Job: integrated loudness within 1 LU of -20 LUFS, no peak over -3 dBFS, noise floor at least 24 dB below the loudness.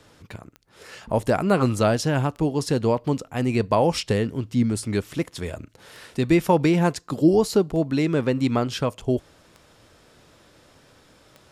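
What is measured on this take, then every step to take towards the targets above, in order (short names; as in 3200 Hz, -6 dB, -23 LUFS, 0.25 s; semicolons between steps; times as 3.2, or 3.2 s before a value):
clicks 7; loudness -22.5 LUFS; peak -7.0 dBFS; loudness target -20.0 LUFS
-> de-click; gain +2.5 dB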